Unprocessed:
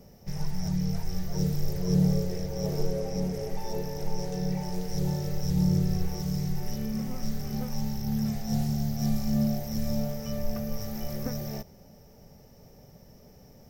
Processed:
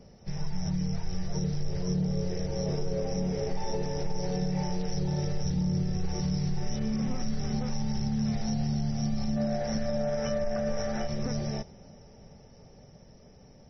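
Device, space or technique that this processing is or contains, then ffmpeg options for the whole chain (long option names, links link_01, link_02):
low-bitrate web radio: -filter_complex "[0:a]asplit=3[link_01][link_02][link_03];[link_01]afade=type=out:start_time=9.36:duration=0.02[link_04];[link_02]equalizer=frequency=100:width_type=o:width=0.67:gain=-6,equalizer=frequency=630:width_type=o:width=0.67:gain=10,equalizer=frequency=1600:width_type=o:width=0.67:gain=11,afade=type=in:start_time=9.36:duration=0.02,afade=type=out:start_time=11.06:duration=0.02[link_05];[link_03]afade=type=in:start_time=11.06:duration=0.02[link_06];[link_04][link_05][link_06]amix=inputs=3:normalize=0,dynaudnorm=framelen=470:gausssize=11:maxgain=4.5dB,alimiter=limit=-21dB:level=0:latency=1:release=48" -ar 24000 -c:a libmp3lame -b:a 24k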